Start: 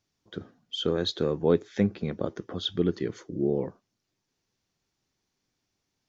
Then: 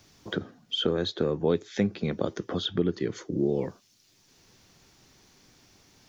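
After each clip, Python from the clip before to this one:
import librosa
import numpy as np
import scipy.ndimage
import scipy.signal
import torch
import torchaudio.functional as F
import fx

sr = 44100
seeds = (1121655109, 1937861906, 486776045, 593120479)

y = fx.band_squash(x, sr, depth_pct=70)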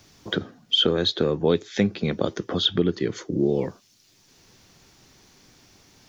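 y = fx.dynamic_eq(x, sr, hz=3600.0, q=0.89, threshold_db=-45.0, ratio=4.0, max_db=6)
y = y * librosa.db_to_amplitude(4.0)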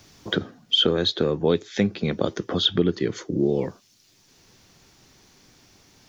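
y = fx.rider(x, sr, range_db=4, speed_s=2.0)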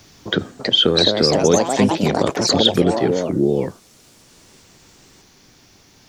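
y = fx.echo_pitch(x, sr, ms=390, semitones=4, count=3, db_per_echo=-3.0)
y = y * librosa.db_to_amplitude(4.5)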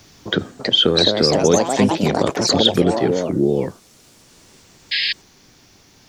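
y = fx.spec_paint(x, sr, seeds[0], shape='noise', start_s=4.91, length_s=0.22, low_hz=1600.0, high_hz=5200.0, level_db=-20.0)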